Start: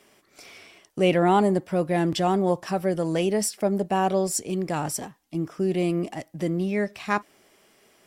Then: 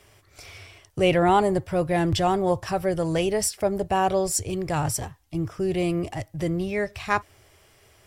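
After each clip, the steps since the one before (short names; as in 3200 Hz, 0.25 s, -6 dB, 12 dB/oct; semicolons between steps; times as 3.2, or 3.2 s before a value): resonant low shelf 140 Hz +13.5 dB, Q 3; gain +2 dB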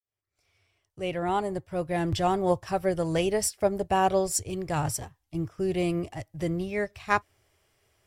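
opening faded in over 2.62 s; upward expander 1.5:1, over -43 dBFS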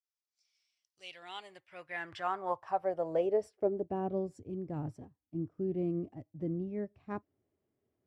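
band-pass sweep 5300 Hz -> 250 Hz, 0.85–4.05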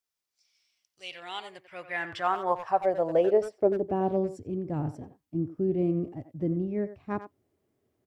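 speakerphone echo 90 ms, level -11 dB; gain +7 dB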